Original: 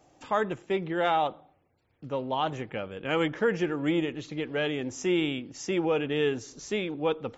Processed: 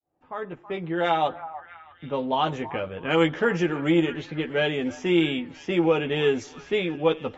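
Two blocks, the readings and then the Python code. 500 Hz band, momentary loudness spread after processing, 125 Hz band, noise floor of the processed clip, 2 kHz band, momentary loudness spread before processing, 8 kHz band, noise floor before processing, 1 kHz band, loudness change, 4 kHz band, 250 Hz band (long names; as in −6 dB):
+4.0 dB, 13 LU, +5.0 dB, −55 dBFS, +4.5 dB, 9 LU, can't be measured, −70 dBFS, +3.0 dB, +4.5 dB, +4.5 dB, +4.5 dB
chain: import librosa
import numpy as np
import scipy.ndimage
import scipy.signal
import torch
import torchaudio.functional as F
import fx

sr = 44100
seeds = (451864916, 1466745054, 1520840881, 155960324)

y = fx.fade_in_head(x, sr, length_s=1.35)
y = fx.env_lowpass(y, sr, base_hz=1400.0, full_db=-23.0)
y = fx.doubler(y, sr, ms=12.0, db=-5)
y = fx.echo_stepped(y, sr, ms=324, hz=1000.0, octaves=0.7, feedback_pct=70, wet_db=-12.0)
y = y * librosa.db_to_amplitude(3.5)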